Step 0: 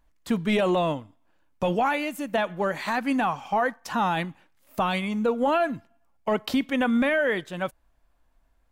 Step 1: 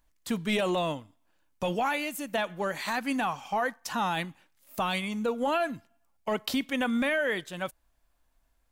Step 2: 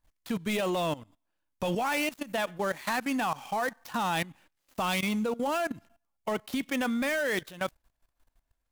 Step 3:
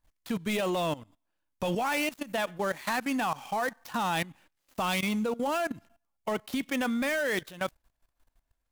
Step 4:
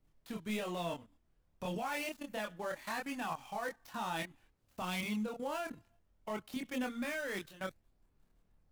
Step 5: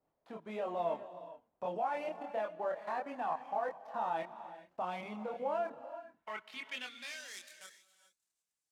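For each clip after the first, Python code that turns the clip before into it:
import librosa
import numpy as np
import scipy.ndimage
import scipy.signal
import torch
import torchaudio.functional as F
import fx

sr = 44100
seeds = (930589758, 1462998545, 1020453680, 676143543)

y1 = fx.high_shelf(x, sr, hz=3000.0, db=10.0)
y1 = y1 * librosa.db_to_amplitude(-5.5)
y2 = fx.dead_time(y1, sr, dead_ms=0.057)
y2 = fx.level_steps(y2, sr, step_db=17)
y2 = y2 * librosa.db_to_amplitude(5.5)
y3 = y2
y4 = fx.dmg_noise_colour(y3, sr, seeds[0], colour='brown', level_db=-63.0)
y4 = fx.chorus_voices(y4, sr, voices=2, hz=0.3, base_ms=26, depth_ms=2.3, mix_pct=45)
y4 = y4 * librosa.db_to_amplitude(-6.0)
y5 = fx.filter_sweep_bandpass(y4, sr, from_hz=700.0, to_hz=7600.0, start_s=5.6, end_s=7.51, q=1.8)
y5 = fx.rev_gated(y5, sr, seeds[1], gate_ms=450, shape='rising', drr_db=12.0)
y5 = y5 * librosa.db_to_amplitude(6.5)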